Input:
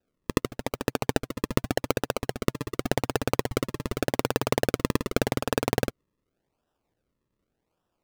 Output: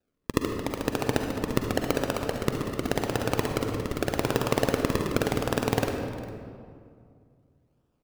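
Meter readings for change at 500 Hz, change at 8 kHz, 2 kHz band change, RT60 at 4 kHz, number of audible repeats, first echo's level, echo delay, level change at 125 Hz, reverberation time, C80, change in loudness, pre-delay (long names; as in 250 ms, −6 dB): +1.0 dB, −0.5 dB, 0.0 dB, 1.3 s, 1, −18.0 dB, 404 ms, +1.0 dB, 2.3 s, 5.0 dB, +0.5 dB, 40 ms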